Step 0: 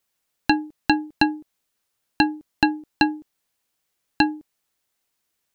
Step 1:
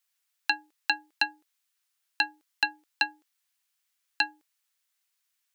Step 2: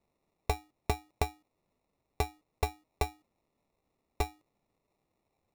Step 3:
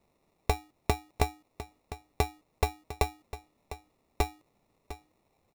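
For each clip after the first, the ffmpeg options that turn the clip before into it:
-af "highpass=1.3k,volume=-2dB"
-filter_complex "[0:a]acrossover=split=2600[a][b];[b]acompressor=threshold=-37dB:ratio=6[c];[a][c]amix=inputs=2:normalize=0,acrusher=samples=28:mix=1:aa=0.000001,volume=-2dB"
-filter_complex "[0:a]asplit=2[a][b];[b]acompressor=threshold=-36dB:ratio=6,volume=3dB[c];[a][c]amix=inputs=2:normalize=0,aecho=1:1:703:0.2"

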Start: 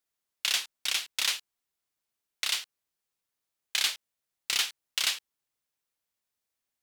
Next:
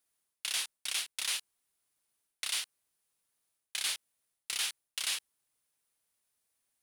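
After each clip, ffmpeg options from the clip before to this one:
-af "equalizer=f=9.7k:w=3.1:g=10.5,areverse,acompressor=threshold=-34dB:ratio=6,areverse,volume=2.5dB"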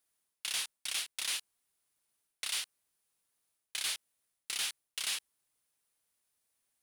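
-af "asoftclip=type=tanh:threshold=-25.5dB"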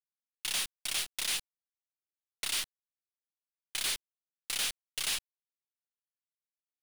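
-af "acrusher=bits=7:dc=4:mix=0:aa=0.000001,asoftclip=type=hard:threshold=-32.5dB,volume=4.5dB"

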